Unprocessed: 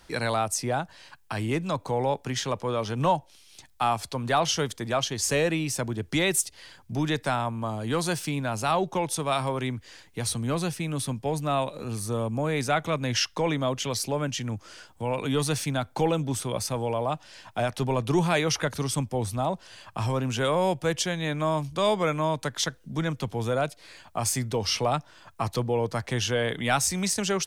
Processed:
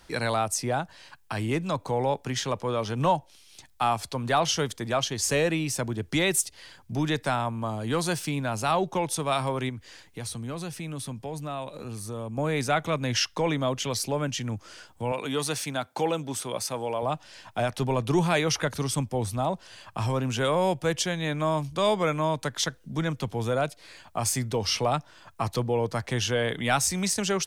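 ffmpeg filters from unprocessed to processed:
-filter_complex "[0:a]asettb=1/sr,asplit=3[a][b][c];[a]atrim=end=9.694[d];[b]atrim=start=9.69:end=12.38,asetpts=PTS-STARTPTS,afade=t=in:d=0.004:c=qsin,afade=t=out:st=2.686:d=0.004:c=qsin,acompressor=threshold=-36dB:ratio=2:attack=3.2:release=140:knee=1:detection=peak[e];[c]atrim=start=12.376[f];[d][e]acrossfade=d=0.004:c1=hsin:c2=qsin[g];[g][f]acrossfade=d=0.004:c1=qsin:c2=hsin,asettb=1/sr,asplit=3[h][i][j];[h]atrim=end=15.124[k];[i]atrim=start=15.12:end=17.03,asetpts=PTS-STARTPTS,afade=t=in:d=0.004:c=qsin,afade=t=out:st=1.906:d=0.004:c=qsin,highpass=f=330:p=1[l];[j]atrim=start=17.026[m];[k][l]acrossfade=d=0.004:c1=hsin:c2=qsin[n];[n][m]acrossfade=d=0.004:c1=qsin:c2=hsin"

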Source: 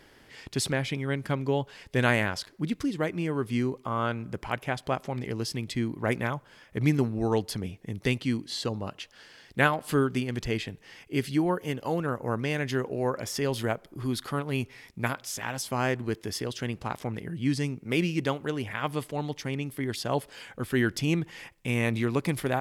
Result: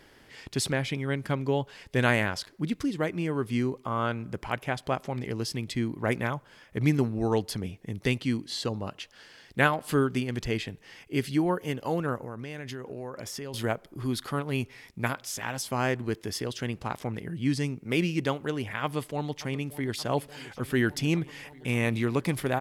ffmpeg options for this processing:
-filter_complex "[0:a]asettb=1/sr,asplit=3[a][b][c];[a]atrim=end=12.184[d];[b]atrim=start=12.18:end=13.54,asetpts=PTS-STARTPTS,afade=t=in:d=0.004:c=qsin,afade=t=out:st=1.356:d=0.004:c=qsin,acompressor=threshold=-34dB:ratio=6:attack=3.2:release=140:knee=1:detection=peak[e];[c]atrim=start=13.536[f];[d][e]acrossfade=d=0.004:c1=hsin:c2=qsin[g];[g][f]acrossfade=d=0.004:c1=qsin:c2=hsin,asplit=2[h][i];[i]afade=t=in:st=18.82:d=0.01,afade=t=out:st=19.97:d=0.01,aecho=0:1:580|1160|1740|2320|2900|3480|4060|4640|5220|5800|6380|6960:0.133352|0.113349|0.0963469|0.0818949|0.0696107|0.0591691|0.0502937|0.0427496|0.0363372|0.0308866|0.0262536|0.0223156[j];[h][j]amix=inputs=2:normalize=0"

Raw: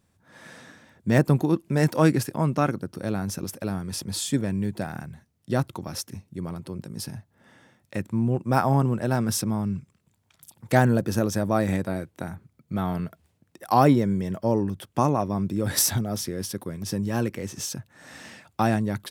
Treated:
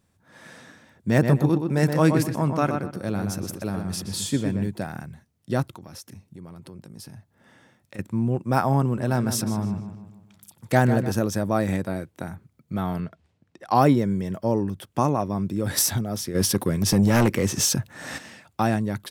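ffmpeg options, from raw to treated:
-filter_complex "[0:a]asettb=1/sr,asplit=3[a][b][c];[a]atrim=end=1.104[d];[b]atrim=start=1.1:end=4.68,asetpts=PTS-STARTPTS,afade=t=in:d=0.004:c=qsin,afade=t=out:st=3.576:d=0.004:c=qsin,asplit=2[e][f];[f]adelay=123,lowpass=f=3.1k:p=1,volume=-5.5dB,asplit=2[g][h];[h]adelay=123,lowpass=f=3.1k:p=1,volume=0.28,asplit=2[i][j];[j]adelay=123,lowpass=f=3.1k:p=1,volume=0.28,asplit=2[k][l];[l]adelay=123,lowpass=f=3.1k:p=1,volume=0.28[m];[e][g][i][k][m]amix=inputs=5:normalize=0,atrim=end_sample=157878[n];[c]atrim=start=4.676[o];[d][n]acrossfade=d=0.004:c1=hsin:c2=qsin[p];[p][o]acrossfade=d=0.004:c1=qsin:c2=hsin,asettb=1/sr,asplit=3[q][r][s];[q]atrim=end=5.744[t];[r]atrim=start=5.74:end=7.99,asetpts=PTS-STARTPTS,afade=t=in:d=0.004:c=qsin,afade=t=out:st=2.246:d=0.004:c=qsin,acompressor=threshold=-40dB:ratio=3:attack=3.2:release=140:knee=1:detection=peak[u];[s]atrim=start=7.986[v];[t][u]acrossfade=d=0.004:c1=hsin:c2=qsin[w];[w][v]acrossfade=d=0.004:c1=qsin:c2=hsin,asettb=1/sr,asplit=3[x][y][z];[x]atrim=end=8.824[aa];[y]atrim=start=8.82:end=11.12,asetpts=PTS-STARTPTS,afade=t=in:d=0.004:c=qsin,afade=t=out:st=2.296:d=0.004:c=qsin,asplit=2[ab][ac];[ac]adelay=151,lowpass=f=4.2k:p=1,volume=-9.5dB,asplit=2[ad][ae];[ae]adelay=151,lowpass=f=4.2k:p=1,volume=0.47,asplit=2[af][ag];[ag]adelay=151,lowpass=f=4.2k:p=1,volume=0.47,asplit=2[ah][ai];[ai]adelay=151,lowpass=f=4.2k:p=1,volume=0.47,asplit=2[aj][ak];[ak]adelay=151,lowpass=f=4.2k:p=1,volume=0.47[al];[ab][ad][af][ah][aj][al]amix=inputs=6:normalize=0,atrim=end_sample=101430[am];[z]atrim=start=11.116[an];[aa][am]acrossfade=d=0.004:c1=hsin:c2=qsin[ao];[ao][an]acrossfade=d=0.004:c1=qsin:c2=hsin,asettb=1/sr,asplit=3[ap][aq][ar];[ap]atrim=end=13.004[as];[aq]atrim=start=13:end=13.75,asetpts=PTS-STARTPTS,afade=t=in:d=0.004:c=qsin,afade=t=out:st=0.746:d=0.004:c=qsin,lowpass=5.3k[at];[ar]atrim=start=13.746[au];[as][at]acrossfade=d=0.004:c1=hsin:c2=qsin[av];[av][au]acrossfade=d=0.004:c1=qsin:c2=hsin,asplit=3[aw][ax][ay];[aw]afade=t=out:st=16.34:d=0.02[az];[ax]aeval=exprs='0.237*sin(PI/2*2.24*val(0)/0.237)':c=same,afade=t=in:st=16.34:d=0.02,afade=t=out:st=18.17:d=0.02[ba];[ay]afade=t=in:st=18.17:d=0.02[bb];[az][ba][bb]amix=inputs=3:normalize=0"

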